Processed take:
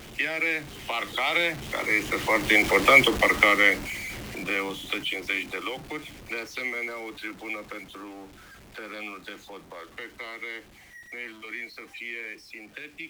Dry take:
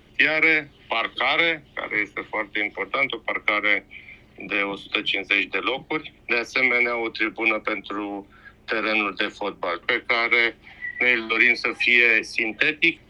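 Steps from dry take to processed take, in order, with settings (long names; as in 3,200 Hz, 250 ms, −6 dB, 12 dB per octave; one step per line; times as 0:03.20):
converter with a step at zero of −28.5 dBFS
source passing by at 0:02.90, 8 m/s, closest 3.7 metres
level +5.5 dB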